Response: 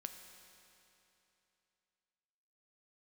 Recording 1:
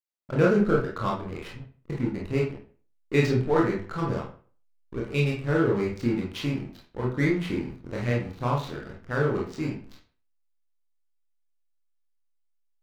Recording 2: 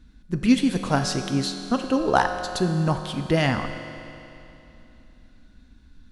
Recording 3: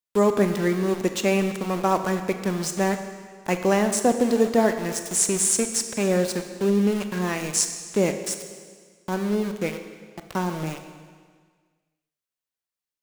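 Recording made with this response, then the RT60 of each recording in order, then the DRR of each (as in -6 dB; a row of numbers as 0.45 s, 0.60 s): 2; 0.45 s, 3.0 s, 1.7 s; -3.5 dB, 5.5 dB, 7.0 dB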